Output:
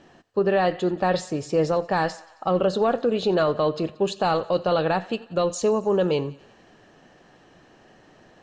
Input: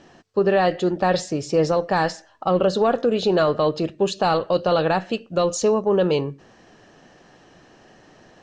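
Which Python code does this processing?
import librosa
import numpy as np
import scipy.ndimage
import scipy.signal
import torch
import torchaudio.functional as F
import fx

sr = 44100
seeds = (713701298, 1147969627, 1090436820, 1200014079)

p1 = fx.peak_eq(x, sr, hz=5600.0, db=-4.5, octaves=0.54)
p2 = p1 + fx.echo_thinned(p1, sr, ms=90, feedback_pct=69, hz=510.0, wet_db=-20.5, dry=0)
y = p2 * 10.0 ** (-2.5 / 20.0)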